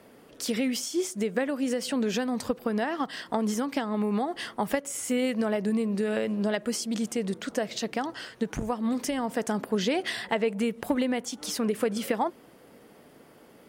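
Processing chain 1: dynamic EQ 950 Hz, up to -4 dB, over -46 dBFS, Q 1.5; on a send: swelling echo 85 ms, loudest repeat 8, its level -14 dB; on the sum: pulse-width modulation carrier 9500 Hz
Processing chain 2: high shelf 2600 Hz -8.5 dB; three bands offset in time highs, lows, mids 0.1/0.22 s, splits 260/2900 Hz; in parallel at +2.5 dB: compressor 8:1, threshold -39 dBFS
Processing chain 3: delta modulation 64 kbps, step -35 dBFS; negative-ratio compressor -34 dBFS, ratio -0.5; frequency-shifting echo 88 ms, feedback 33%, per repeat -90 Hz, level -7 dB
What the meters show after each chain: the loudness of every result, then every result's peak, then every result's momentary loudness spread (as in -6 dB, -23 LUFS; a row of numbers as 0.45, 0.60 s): -28.0, -29.0, -32.5 LUFS; -13.5, -12.0, -11.5 dBFS; 4, 5, 8 LU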